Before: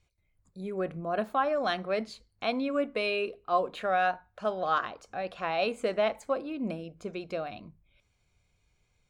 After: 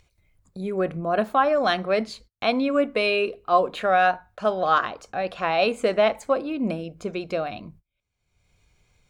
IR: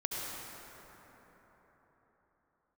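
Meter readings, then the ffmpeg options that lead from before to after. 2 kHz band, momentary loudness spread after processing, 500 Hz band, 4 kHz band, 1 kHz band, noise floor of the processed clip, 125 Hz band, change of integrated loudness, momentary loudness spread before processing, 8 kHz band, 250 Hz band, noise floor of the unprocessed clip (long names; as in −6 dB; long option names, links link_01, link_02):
+7.5 dB, 10 LU, +7.5 dB, +7.5 dB, +7.5 dB, −79 dBFS, +7.5 dB, +7.5 dB, 10 LU, can't be measured, +7.5 dB, −74 dBFS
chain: -af "agate=range=-32dB:threshold=-56dB:ratio=16:detection=peak,acompressor=mode=upward:threshold=-44dB:ratio=2.5,volume=7.5dB"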